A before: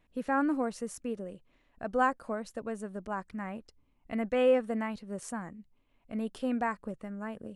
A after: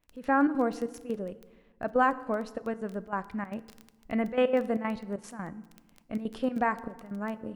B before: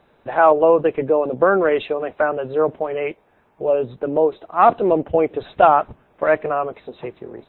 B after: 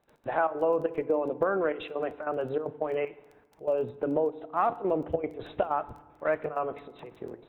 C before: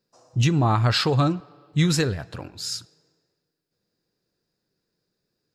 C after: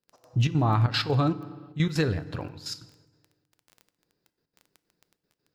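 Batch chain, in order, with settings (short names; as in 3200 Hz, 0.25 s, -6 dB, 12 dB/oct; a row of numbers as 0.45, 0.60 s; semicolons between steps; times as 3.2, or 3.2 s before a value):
bell 8500 Hz -11 dB 1.2 oct; compressor 3:1, threshold -21 dBFS; crackle 11/s -38 dBFS; step gate ".x.xxx.xxxx" 192 bpm -12 dB; FDN reverb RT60 1.2 s, low-frequency decay 1.35×, high-frequency decay 0.7×, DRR 14.5 dB; normalise peaks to -12 dBFS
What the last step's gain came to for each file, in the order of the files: +4.5, -4.0, +0.5 dB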